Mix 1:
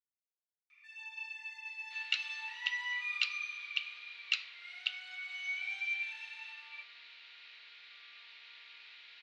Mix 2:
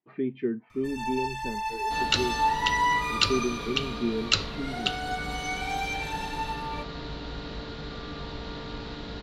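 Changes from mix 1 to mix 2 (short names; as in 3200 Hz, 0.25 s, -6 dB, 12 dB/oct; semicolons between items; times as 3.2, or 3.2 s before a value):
speech: unmuted; master: remove ladder band-pass 2600 Hz, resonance 65%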